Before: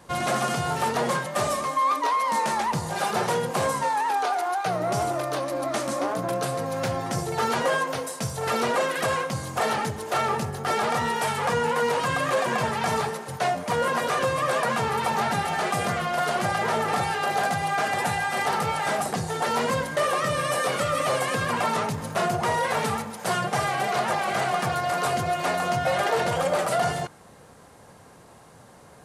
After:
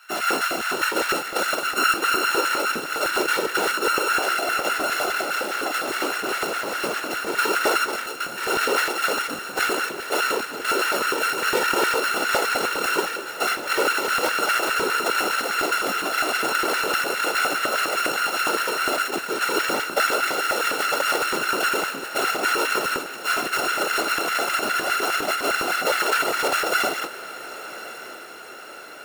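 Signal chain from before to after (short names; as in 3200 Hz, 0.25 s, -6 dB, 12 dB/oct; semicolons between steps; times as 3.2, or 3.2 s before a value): sample sorter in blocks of 32 samples; whisperiser; LFO high-pass square 4.9 Hz 360–1600 Hz; on a send: diffused feedback echo 1.107 s, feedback 58%, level -15 dB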